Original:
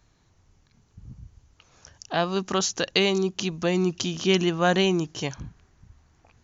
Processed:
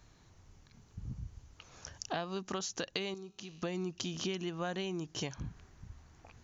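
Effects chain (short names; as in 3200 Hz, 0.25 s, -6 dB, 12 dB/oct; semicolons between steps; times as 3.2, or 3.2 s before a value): compressor 8:1, threshold -36 dBFS, peak gain reduction 19.5 dB; 3.14–3.63 resonator 51 Hz, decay 1.9 s, harmonics all, mix 70%; gain +1.5 dB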